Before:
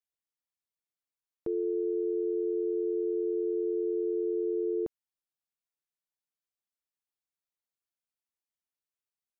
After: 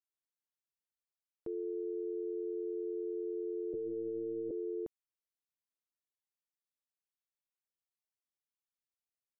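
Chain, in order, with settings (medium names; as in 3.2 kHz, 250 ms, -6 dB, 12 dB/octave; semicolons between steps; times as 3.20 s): 3.73–4.51 s: LPC vocoder at 8 kHz pitch kept; trim -8 dB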